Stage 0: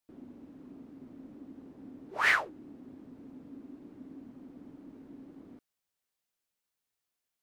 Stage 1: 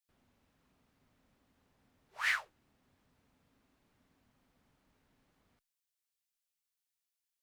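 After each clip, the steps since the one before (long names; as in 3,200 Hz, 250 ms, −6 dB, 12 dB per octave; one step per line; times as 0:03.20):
guitar amp tone stack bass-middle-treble 10-0-10
level −2 dB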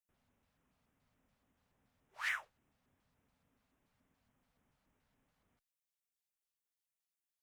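auto-filter notch square 3.5 Hz 330–4,400 Hz
level −5 dB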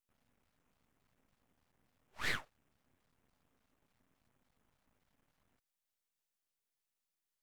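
half-wave rectification
level +5 dB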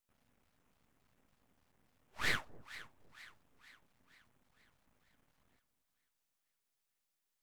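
echo with a time of its own for lows and highs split 800 Hz, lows 255 ms, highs 466 ms, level −15.5 dB
level +2.5 dB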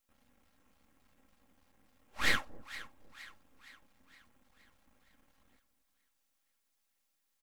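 comb filter 3.7 ms, depth 48%
level +4 dB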